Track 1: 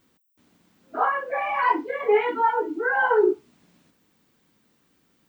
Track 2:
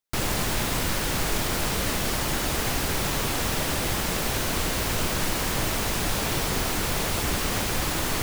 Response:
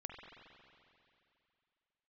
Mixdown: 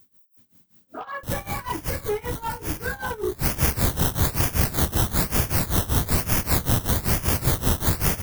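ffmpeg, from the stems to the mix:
-filter_complex "[0:a]asoftclip=type=tanh:threshold=-15.5dB,volume=-5dB,asplit=2[a][b];[1:a]acrusher=samples=15:mix=1:aa=0.000001:lfo=1:lforange=9:lforate=1.1,adelay=1100,volume=0dB[c];[b]apad=whole_len=411351[d];[c][d]sidechaincompress=threshold=-41dB:ratio=8:attack=40:release=151[e];[a][e]amix=inputs=2:normalize=0,equalizer=f=89:w=0.5:g=13.5,tremolo=f=5.2:d=0.89,aemphasis=mode=production:type=75fm"

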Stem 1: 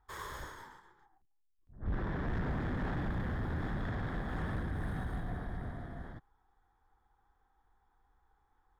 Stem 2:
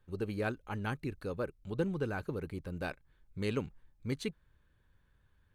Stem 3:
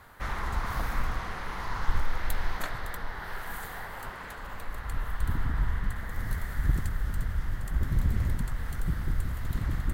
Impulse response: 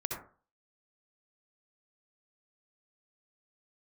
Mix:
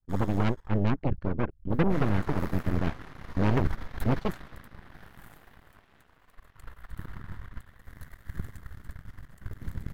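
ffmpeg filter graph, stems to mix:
-filter_complex "[0:a]volume=-8dB[a];[1:a]aemphasis=mode=reproduction:type=riaa,agate=range=-33dB:threshold=-50dB:ratio=3:detection=peak,highshelf=f=4.4k:g=-10.5,volume=1dB[b];[2:a]bandreject=f=860:w=12,adelay=1700,volume=-10dB[c];[a][b][c]amix=inputs=3:normalize=0,aeval=exprs='0.158*(cos(1*acos(clip(val(0)/0.158,-1,1)))-cos(1*PI/2))+0.0251*(cos(3*acos(clip(val(0)/0.158,-1,1)))-cos(3*PI/2))+0.00501*(cos(5*acos(clip(val(0)/0.158,-1,1)))-cos(5*PI/2))+0.0447*(cos(6*acos(clip(val(0)/0.158,-1,1)))-cos(6*PI/2))+0.0178*(cos(7*acos(clip(val(0)/0.158,-1,1)))-cos(7*PI/2))':c=same"

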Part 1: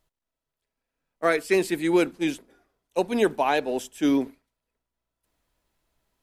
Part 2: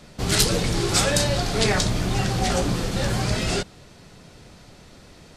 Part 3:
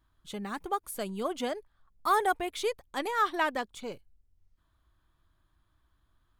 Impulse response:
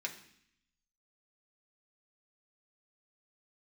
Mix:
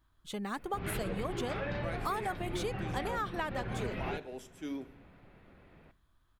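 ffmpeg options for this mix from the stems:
-filter_complex "[0:a]adelay=600,volume=-20dB,asplit=2[a][b];[b]volume=-3.5dB[c];[1:a]lowpass=f=2.5k:w=0.5412,lowpass=f=2.5k:w=1.3066,adelay=550,volume=-11.5dB,asplit=2[d][e];[e]volume=-9.5dB[f];[2:a]volume=0dB[g];[3:a]atrim=start_sample=2205[h];[c][f]amix=inputs=2:normalize=0[i];[i][h]afir=irnorm=-1:irlink=0[j];[a][d][g][j]amix=inputs=4:normalize=0,acompressor=threshold=-31dB:ratio=12"

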